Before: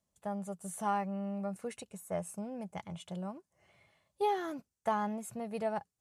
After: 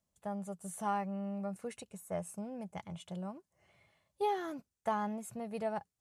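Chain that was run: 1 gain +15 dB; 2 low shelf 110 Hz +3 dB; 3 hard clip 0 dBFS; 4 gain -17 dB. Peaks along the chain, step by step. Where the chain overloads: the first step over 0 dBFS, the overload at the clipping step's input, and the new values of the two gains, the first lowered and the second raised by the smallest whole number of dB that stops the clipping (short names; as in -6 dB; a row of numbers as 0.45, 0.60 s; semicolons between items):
-5.5, -5.0, -5.0, -22.0 dBFS; no overload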